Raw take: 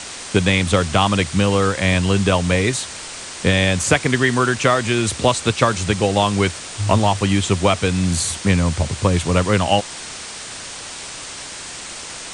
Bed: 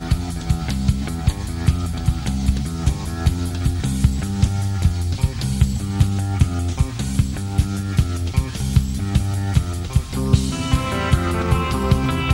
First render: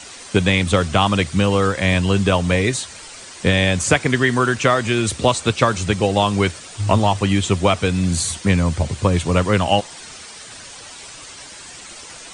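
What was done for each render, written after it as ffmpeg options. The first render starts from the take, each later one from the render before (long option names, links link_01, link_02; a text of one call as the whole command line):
ffmpeg -i in.wav -af "afftdn=noise_reduction=9:noise_floor=-33" out.wav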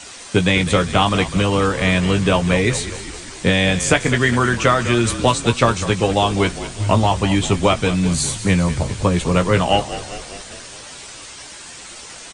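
ffmpeg -i in.wav -filter_complex "[0:a]asplit=2[link_01][link_02];[link_02]adelay=17,volume=-8dB[link_03];[link_01][link_03]amix=inputs=2:normalize=0,asplit=8[link_04][link_05][link_06][link_07][link_08][link_09][link_10][link_11];[link_05]adelay=201,afreqshift=-38,volume=-13dB[link_12];[link_06]adelay=402,afreqshift=-76,volume=-17.4dB[link_13];[link_07]adelay=603,afreqshift=-114,volume=-21.9dB[link_14];[link_08]adelay=804,afreqshift=-152,volume=-26.3dB[link_15];[link_09]adelay=1005,afreqshift=-190,volume=-30.7dB[link_16];[link_10]adelay=1206,afreqshift=-228,volume=-35.2dB[link_17];[link_11]adelay=1407,afreqshift=-266,volume=-39.6dB[link_18];[link_04][link_12][link_13][link_14][link_15][link_16][link_17][link_18]amix=inputs=8:normalize=0" out.wav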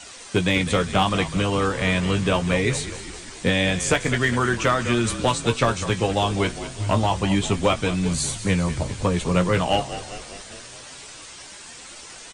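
ffmpeg -i in.wav -af "asoftclip=type=hard:threshold=-6.5dB,flanger=delay=1.3:depth=8.1:regen=77:speed=0.24:shape=triangular" out.wav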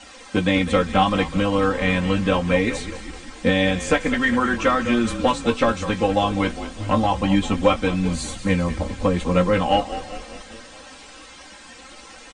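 ffmpeg -i in.wav -af "lowpass=frequency=2400:poles=1,aecho=1:1:3.8:0.92" out.wav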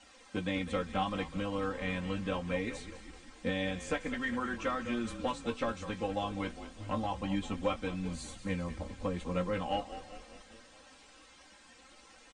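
ffmpeg -i in.wav -af "volume=-15dB" out.wav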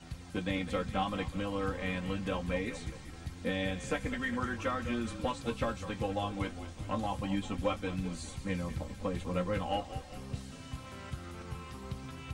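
ffmpeg -i in.wav -i bed.wav -filter_complex "[1:a]volume=-24.5dB[link_01];[0:a][link_01]amix=inputs=2:normalize=0" out.wav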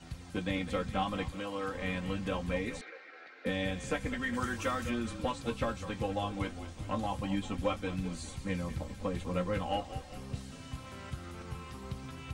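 ffmpeg -i in.wav -filter_complex "[0:a]asettb=1/sr,asplit=3[link_01][link_02][link_03];[link_01]atrim=end=1.354[link_04];[link_02]atrim=start=1.35:end=1.75,asetpts=PTS-STARTPTS,afade=type=in:duration=0.004:curve=qsin,afade=type=out:start_time=0.396:duration=0.004:curve=qsin,highpass=frequency=350:poles=1[link_05];[link_03]atrim=start=1.746[link_06];[link_04][link_05]acrossfade=duration=0.004:curve1=hsin:curve2=qsin[link_07];[link_07][link_06]acrossfade=duration=0.004:curve1=qsin:curve2=hsin,asettb=1/sr,asplit=3[link_08][link_09][link_10];[link_08]atrim=end=2.814[link_11];[link_09]atrim=start=2.81:end=3.46,asetpts=PTS-STARTPTS,afade=type=in:duration=0.004:curve=qsin,afade=type=out:start_time=0.646:duration=0.004:curve=qsin,highpass=frequency=440:width=0.5412,highpass=frequency=440:width=1.3066,equalizer=frequency=490:width_type=q:width=4:gain=4,equalizer=frequency=960:width_type=q:width=4:gain=-9,equalizer=frequency=1500:width_type=q:width=4:gain=10,equalizer=frequency=2200:width_type=q:width=4:gain=6,equalizer=frequency=3200:width_type=q:width=4:gain=-8,lowpass=frequency=3800:width=0.5412,lowpass=frequency=3800:width=1.3066[link_12];[link_10]atrim=start=3.456[link_13];[link_11][link_12]acrossfade=duration=0.004:curve1=hsin:curve2=qsin[link_14];[link_14][link_13]acrossfade=duration=0.004:curve1=qsin:curve2=hsin,asplit=3[link_15][link_16][link_17];[link_15]afade=type=out:start_time=4.33:duration=0.02[link_18];[link_16]aemphasis=mode=production:type=50kf,afade=type=in:start_time=4.33:duration=0.02,afade=type=out:start_time=4.89:duration=0.02[link_19];[link_17]afade=type=in:start_time=4.89:duration=0.02[link_20];[link_18][link_19][link_20]amix=inputs=3:normalize=0" out.wav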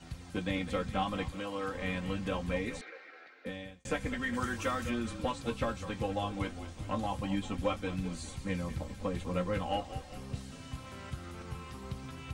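ffmpeg -i in.wav -filter_complex "[0:a]asplit=2[link_01][link_02];[link_01]atrim=end=3.85,asetpts=PTS-STARTPTS,afade=type=out:start_time=3.06:duration=0.79[link_03];[link_02]atrim=start=3.85,asetpts=PTS-STARTPTS,afade=type=in:duration=0.004:curve=hsin[link_04];[link_03][link_04]concat=n=2:v=0:a=1" out.wav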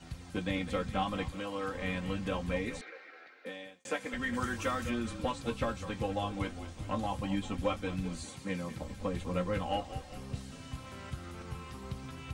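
ffmpeg -i in.wav -filter_complex "[0:a]asettb=1/sr,asplit=3[link_01][link_02][link_03];[link_01]atrim=end=3.374[link_04];[link_02]atrim=start=3.37:end=4.14,asetpts=PTS-STARTPTS,afade=type=in:duration=0.004:curve=qsin,afade=type=out:start_time=0.766:duration=0.004:curve=qsin,highpass=320[link_05];[link_03]atrim=start=4.136[link_06];[link_04][link_05]acrossfade=duration=0.004:curve1=hsin:curve2=qsin[link_07];[link_07][link_06]acrossfade=duration=0.004:curve1=qsin:curve2=hsin,asettb=1/sr,asplit=3[link_08][link_09][link_10];[link_08]atrim=end=8.244[link_11];[link_09]atrim=start=8.24:end=8.82,asetpts=PTS-STARTPTS,afade=type=in:duration=0.004:curve=qsin,afade=type=out:start_time=0.576:duration=0.004:curve=qsin,highpass=150[link_12];[link_10]atrim=start=8.816[link_13];[link_11][link_12]acrossfade=duration=0.004:curve1=hsin:curve2=qsin[link_14];[link_14][link_13]acrossfade=duration=0.004:curve1=qsin:curve2=hsin" out.wav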